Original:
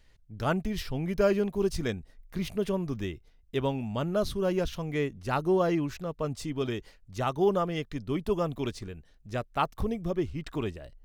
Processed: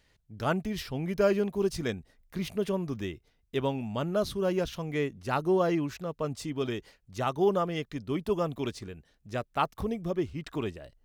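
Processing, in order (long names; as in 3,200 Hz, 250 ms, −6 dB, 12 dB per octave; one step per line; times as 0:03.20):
high-pass filter 100 Hz 6 dB per octave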